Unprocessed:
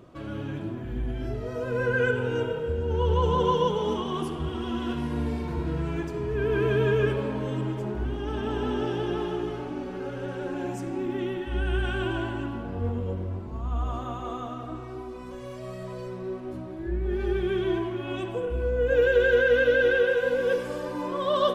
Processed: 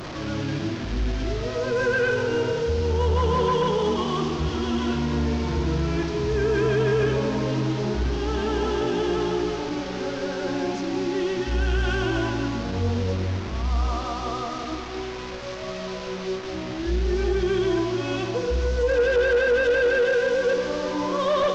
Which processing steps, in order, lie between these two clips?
one-bit delta coder 32 kbps, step -34.5 dBFS; de-hum 124.1 Hz, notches 37; in parallel at +0.5 dB: peak limiter -20.5 dBFS, peak gain reduction 9 dB; on the sum: saturation -14.5 dBFS, distortion -18 dB

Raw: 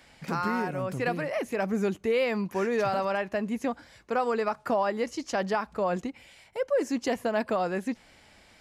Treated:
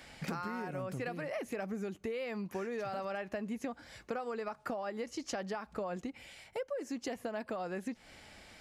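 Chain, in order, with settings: gain riding within 4 dB 0.5 s; band-stop 990 Hz, Q 14; compression 12:1, threshold -35 dBFS, peak gain reduction 14 dB

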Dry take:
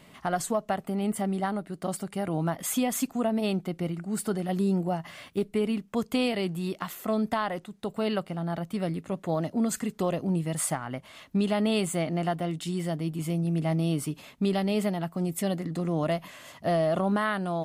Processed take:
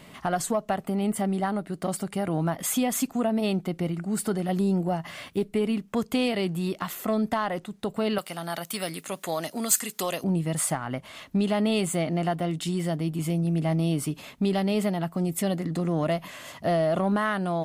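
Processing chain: 8.18–10.24 s: tilt EQ +4.5 dB/octave; in parallel at -2 dB: compression, threshold -33 dBFS, peak gain reduction 16.5 dB; on the sum: saturation -13 dBFS, distortion -24 dB

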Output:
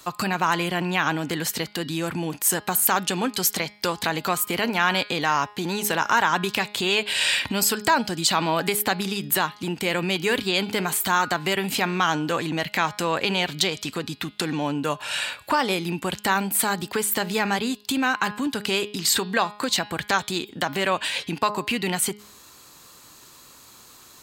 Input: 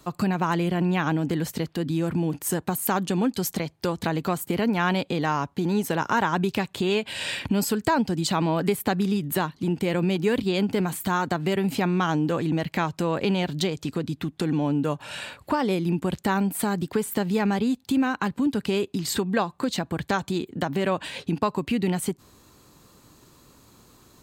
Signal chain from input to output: tilt shelf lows -8 dB, about 630 Hz; de-hum 207.7 Hz, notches 26; in parallel at -1 dB: peak limiter -13 dBFS, peak gain reduction 7 dB; on the sum: trim -3.5 dB

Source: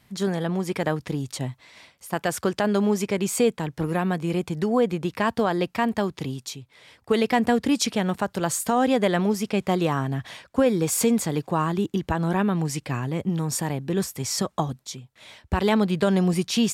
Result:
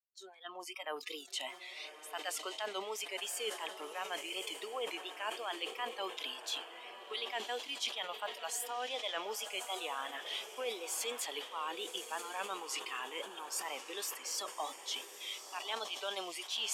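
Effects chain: fade-in on the opening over 1.26 s; expander -47 dBFS; Bessel high-pass 720 Hz, order 6; peaking EQ 3.2 kHz +12.5 dB 0.43 oct; reverse; compression 5:1, threshold -39 dBFS, peak gain reduction 20.5 dB; reverse; spectral noise reduction 24 dB; vibrato 2.8 Hz 78 cents; echo that smears into a reverb 1133 ms, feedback 42%, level -10 dB; decay stretcher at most 120 dB/s; trim +1.5 dB

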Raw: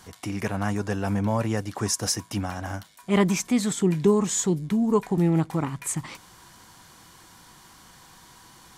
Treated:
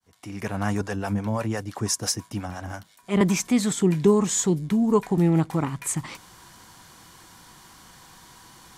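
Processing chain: fade-in on the opening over 0.70 s; 0.81–3.21 s: harmonic tremolo 5.9 Hz, depth 70%, crossover 440 Hz; trim +1.5 dB

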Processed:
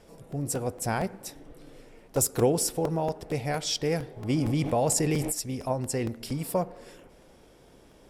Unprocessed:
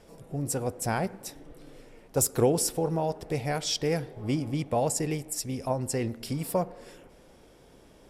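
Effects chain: crackling interface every 0.23 s, samples 128, repeat, from 0.32 s; 4.30–5.32 s: level flattener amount 70%

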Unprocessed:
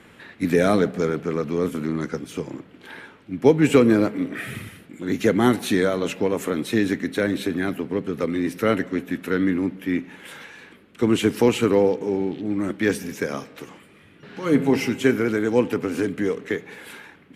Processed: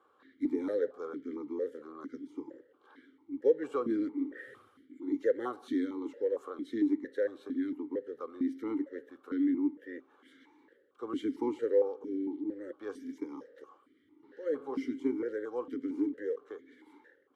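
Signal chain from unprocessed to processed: static phaser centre 680 Hz, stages 6; stepped vowel filter 4.4 Hz

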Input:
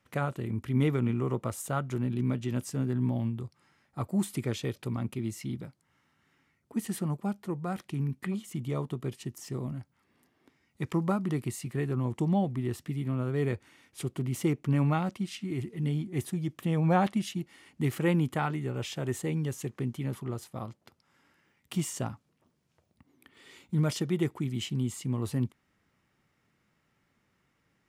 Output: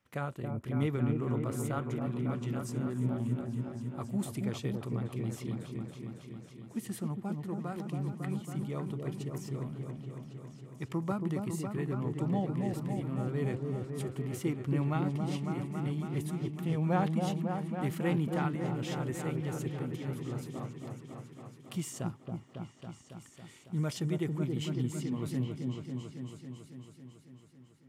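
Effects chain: delay with an opening low-pass 276 ms, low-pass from 750 Hz, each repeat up 1 oct, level -3 dB; trim -5.5 dB

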